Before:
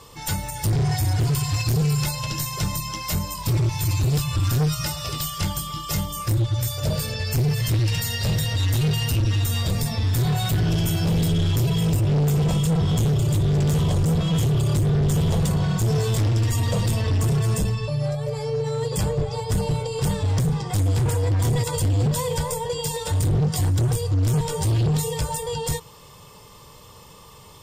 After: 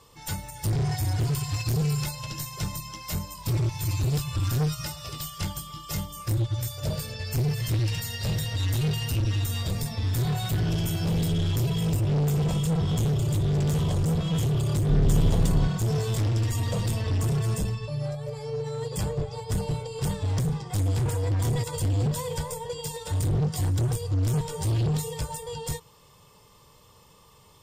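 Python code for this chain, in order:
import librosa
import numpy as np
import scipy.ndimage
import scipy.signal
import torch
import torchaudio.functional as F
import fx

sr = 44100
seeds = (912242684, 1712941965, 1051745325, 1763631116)

p1 = fx.octave_divider(x, sr, octaves=2, level_db=2.0, at=(14.88, 15.68))
p2 = 10.0 ** (-20.5 / 20.0) * np.tanh(p1 / 10.0 ** (-20.5 / 20.0))
p3 = p1 + (p2 * librosa.db_to_amplitude(-9.0))
p4 = fx.upward_expand(p3, sr, threshold_db=-29.0, expansion=1.5)
y = p4 * librosa.db_to_amplitude(-4.0)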